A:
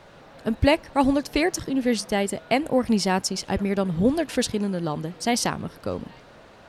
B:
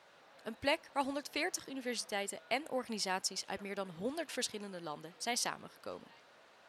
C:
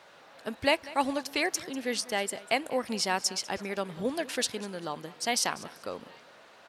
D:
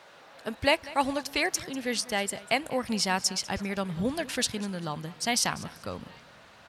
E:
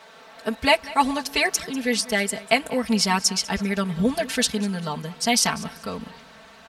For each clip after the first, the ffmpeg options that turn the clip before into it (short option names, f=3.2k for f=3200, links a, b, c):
-af "highpass=f=920:p=1,volume=-9dB"
-af "aecho=1:1:195|390:0.112|0.0303,volume=7.5dB"
-af "asubboost=boost=6.5:cutoff=150,volume=2dB"
-af "aecho=1:1:4.5:0.99,volume=3dB"